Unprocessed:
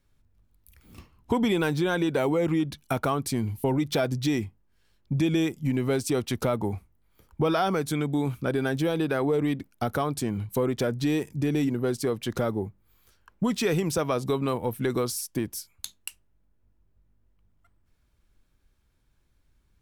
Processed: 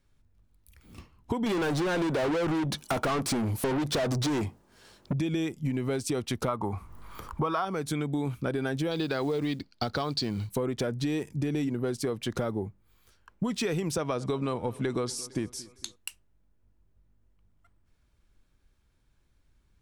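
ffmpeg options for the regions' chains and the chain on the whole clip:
-filter_complex "[0:a]asettb=1/sr,asplit=3[s0][s1][s2];[s0]atrim=end=1.464[s3];[s1]atrim=start=1.46:end=5.13,asetpts=PTS-STARTPTS,afade=t=in:d=0.004:c=qsin,afade=t=out:st=3.666:d=0.004:c=qsin,equalizer=f=2300:t=o:w=2.1:g=-11,asplit=2[s4][s5];[s5]highpass=f=720:p=1,volume=39.8,asoftclip=type=tanh:threshold=0.158[s6];[s4][s6]amix=inputs=2:normalize=0,lowpass=f=4400:p=1,volume=0.501[s7];[s2]atrim=start=5.126[s8];[s3][s7]acrossfade=d=0.004:c1=hsin:c2=qsin[s9];[s9][s8]acrossfade=d=0.004:c1=qsin:c2=hsin,asettb=1/sr,asplit=3[s10][s11][s12];[s10]atrim=end=6.484[s13];[s11]atrim=start=6.48:end=7.65,asetpts=PTS-STARTPTS,afade=t=in:d=0.004:c=qsin,afade=t=out:st=1.166:d=0.004:c=qsin,equalizer=f=1100:t=o:w=0.59:g=15,acompressor=mode=upward:threshold=0.0501:ratio=2.5:attack=3.2:release=140:knee=2.83:detection=peak[s14];[s12]atrim=start=7.646[s15];[s13][s14]acrossfade=d=0.004:c1=hsin:c2=qsin[s16];[s16][s15]acrossfade=d=0.004:c1=qsin:c2=hsin,asettb=1/sr,asplit=3[s17][s18][s19];[s17]atrim=end=8.914[s20];[s18]atrim=start=8.91:end=10.5,asetpts=PTS-STARTPTS,afade=t=in:d=0.004:c=qsin,afade=t=out:st=1.586:d=0.004:c=qsin,lowpass=f=4500:t=q:w=10,acrusher=bits=7:mode=log:mix=0:aa=0.000001[s21];[s19]atrim=start=10.496[s22];[s20][s21]acrossfade=d=0.004:c1=hsin:c2=qsin[s23];[s23][s22]acrossfade=d=0.004:c1=qsin:c2=hsin,asettb=1/sr,asplit=3[s24][s25][s26];[s24]atrim=end=13.964[s27];[s25]atrim=start=13.96:end=15.96,asetpts=PTS-STARTPTS,afade=t=in:d=0.004:c=qsin,afade=t=out:st=1.996:d=0.004:c=qsin,lowpass=f=9400:w=0.5412,lowpass=f=9400:w=1.3066,aecho=1:1:228|456|684|912:0.075|0.039|0.0203|0.0105,atrim=end_sample=88200[s28];[s26]atrim=start=15.956[s29];[s27][s28]acrossfade=d=0.004:c1=hsin:c2=qsin[s30];[s30][s29]acrossfade=d=0.004:c1=qsin:c2=hsin,equalizer=f=14000:t=o:w=0.35:g=-10.5,acompressor=threshold=0.0501:ratio=6"

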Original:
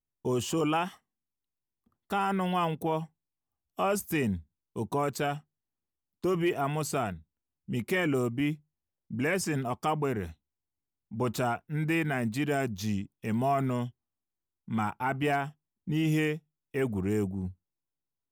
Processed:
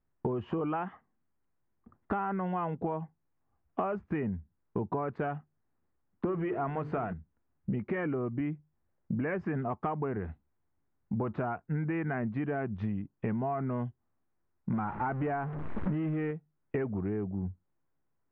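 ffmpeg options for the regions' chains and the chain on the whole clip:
-filter_complex "[0:a]asettb=1/sr,asplit=3[s0][s1][s2];[s0]atrim=end=6.254[s3];[s1]atrim=start=6.25:end=7.13,asetpts=PTS-STARTPTS,afade=t=in:d=0.004:c=qsin,afade=t=out:st=0.876:d=0.004:c=qsin,aeval=exprs='val(0)+0.5*0.0133*sgn(val(0))':c=same,bandreject=f=50:t=h:w=6,bandreject=f=100:t=h:w=6,bandreject=f=150:t=h:w=6,bandreject=f=200:t=h:w=6,bandreject=f=250:t=h:w=6,bandreject=f=300:t=h:w=6,bandreject=f=350:t=h:w=6,bandreject=f=400:t=h:w=6,bandreject=f=450:t=h:w=6,bandreject=f=500:t=h:w=6[s4];[s2]atrim=start=7.126[s5];[s3][s4]acrossfade=d=0.004:c1=hsin:c2=qsin[s6];[s6][s5]acrossfade=d=0.004:c1=qsin:c2=hsin,asettb=1/sr,asplit=3[s7][s8][s9];[s7]atrim=end=14.734[s10];[s8]atrim=start=14.73:end=16.31,asetpts=PTS-STARTPTS,afade=t=in:d=0.004:c=qsin,afade=t=out:st=1.576:d=0.004:c=qsin,aeval=exprs='val(0)+0.5*0.0224*sgn(val(0))':c=same,adynamicequalizer=threshold=0.0112:dfrequency=1800:dqfactor=0.7:tfrequency=1800:tqfactor=0.7:attack=5:release=100:ratio=0.375:range=2:mode=cutabove:tftype=highshelf[s11];[s9]atrim=start=16.306[s12];[s10][s11]acrossfade=d=0.004:c1=hsin:c2=qsin[s13];[s13][s12]acrossfade=d=0.004:c1=qsin:c2=hsin,acontrast=86,lowpass=f=1800:w=0.5412,lowpass=f=1800:w=1.3066,acompressor=threshold=0.0178:ratio=16,volume=1.88"

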